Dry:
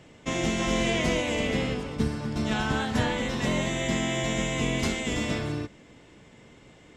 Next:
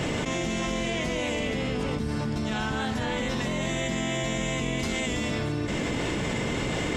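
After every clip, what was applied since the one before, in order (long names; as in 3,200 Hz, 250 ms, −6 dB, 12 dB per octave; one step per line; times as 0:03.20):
envelope flattener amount 100%
level −6.5 dB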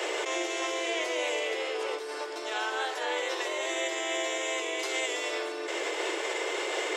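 Butterworth high-pass 340 Hz 96 dB per octave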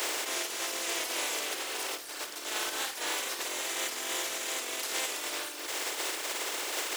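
compressing power law on the bin magnitudes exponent 0.29
reverb reduction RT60 1.1 s
flutter between parallel walls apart 9.2 metres, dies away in 0.35 s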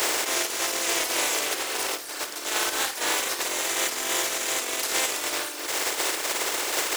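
parametric band 3,100 Hz −2.5 dB 0.77 octaves
in parallel at −11 dB: bit reduction 5 bits
on the sum: level +6.5 dB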